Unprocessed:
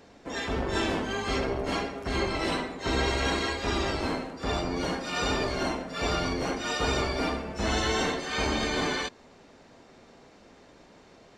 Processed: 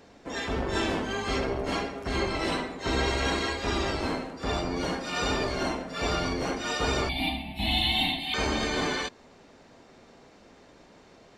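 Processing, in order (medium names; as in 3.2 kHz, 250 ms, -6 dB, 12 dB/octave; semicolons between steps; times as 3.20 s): 7.09–8.34 s: FFT filter 300 Hz 0 dB, 460 Hz -29 dB, 770 Hz +4 dB, 1.4 kHz -26 dB, 2.2 kHz +5 dB, 3.9 kHz +11 dB, 6 kHz -28 dB, 11 kHz +14 dB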